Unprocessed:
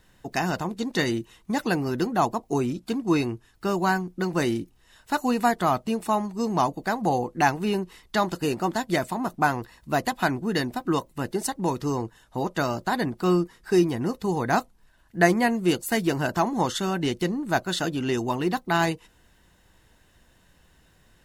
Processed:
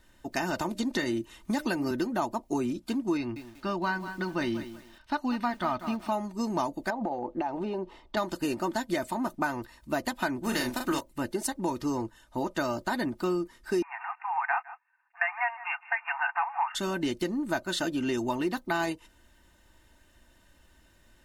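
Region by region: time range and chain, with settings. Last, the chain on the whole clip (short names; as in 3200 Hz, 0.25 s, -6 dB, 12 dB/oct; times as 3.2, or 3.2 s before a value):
0.59–1.91 de-hum 303.5 Hz, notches 2 + three-band squash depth 70%
3.17–6.12 polynomial smoothing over 15 samples + bell 450 Hz -7 dB + lo-fi delay 0.19 s, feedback 35%, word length 7-bit, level -13 dB
6.9–8.17 EQ curve 160 Hz 0 dB, 790 Hz +11 dB, 1600 Hz -4 dB, 3300 Hz -2 dB, 11000 Hz -20 dB + compressor 12:1, threshold -24 dBFS
10.43–10.99 spectral contrast lowered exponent 0.67 + doubler 40 ms -5 dB
13.82–16.75 sample leveller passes 2 + brick-wall FIR band-pass 700–2800 Hz + echo 0.157 s -21.5 dB
whole clip: comb 3.3 ms, depth 53%; compressor 5:1, threshold -22 dBFS; gain -3 dB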